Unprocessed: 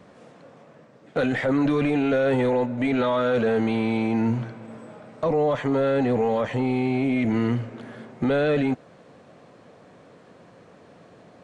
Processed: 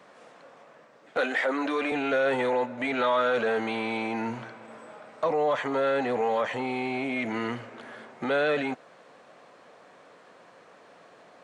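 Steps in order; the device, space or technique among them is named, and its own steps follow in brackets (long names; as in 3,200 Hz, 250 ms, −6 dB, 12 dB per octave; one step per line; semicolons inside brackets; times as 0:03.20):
filter by subtraction (in parallel: low-pass filter 1,100 Hz 12 dB per octave + polarity inversion)
0:01.17–0:01.92: on the sum: high-pass filter 240 Hz 24 dB per octave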